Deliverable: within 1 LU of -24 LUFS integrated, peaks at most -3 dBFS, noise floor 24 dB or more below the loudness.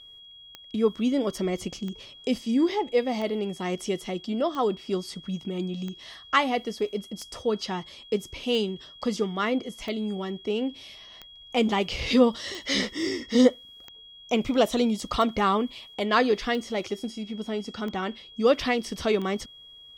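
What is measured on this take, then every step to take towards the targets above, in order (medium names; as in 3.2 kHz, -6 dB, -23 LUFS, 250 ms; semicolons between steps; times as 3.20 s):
clicks found 15; steady tone 3.3 kHz; tone level -46 dBFS; loudness -27.0 LUFS; peak level -6.5 dBFS; loudness target -24.0 LUFS
-> de-click; band-stop 3.3 kHz, Q 30; trim +3 dB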